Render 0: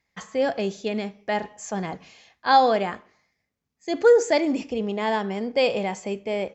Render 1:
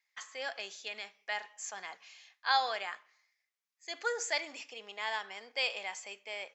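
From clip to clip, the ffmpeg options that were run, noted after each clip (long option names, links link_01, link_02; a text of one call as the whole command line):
ffmpeg -i in.wav -af "highpass=1400,volume=-3.5dB" out.wav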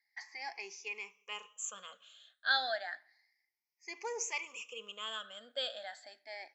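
ffmpeg -i in.wav -af "afftfilt=real='re*pow(10,23/40*sin(2*PI*(0.77*log(max(b,1)*sr/1024/100)/log(2)-(0.31)*(pts-256)/sr)))':imag='im*pow(10,23/40*sin(2*PI*(0.77*log(max(b,1)*sr/1024/100)/log(2)-(0.31)*(pts-256)/sr)))':win_size=1024:overlap=0.75,volume=-8dB" out.wav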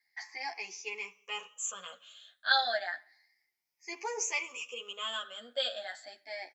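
ffmpeg -i in.wav -filter_complex "[0:a]asplit=2[link_01][link_02];[link_02]adelay=11,afreqshift=-0.32[link_03];[link_01][link_03]amix=inputs=2:normalize=1,volume=7.5dB" out.wav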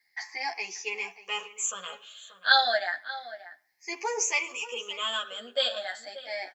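ffmpeg -i in.wav -filter_complex "[0:a]asplit=2[link_01][link_02];[link_02]adelay=583.1,volume=-14dB,highshelf=frequency=4000:gain=-13.1[link_03];[link_01][link_03]amix=inputs=2:normalize=0,volume=6dB" out.wav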